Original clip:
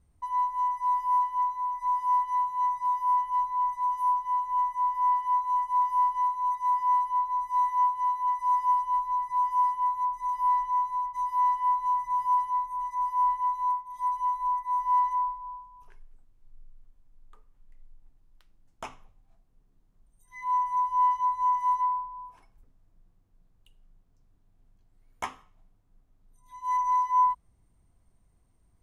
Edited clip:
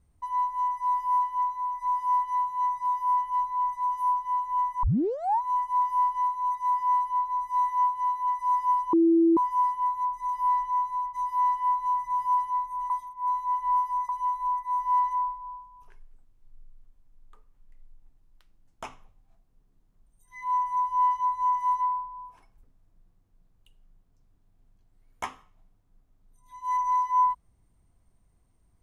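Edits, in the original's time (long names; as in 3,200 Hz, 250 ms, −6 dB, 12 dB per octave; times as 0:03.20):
0:04.83: tape start 0.58 s
0:08.93–0:09.37: beep over 332 Hz −16.5 dBFS
0:12.90–0:14.09: reverse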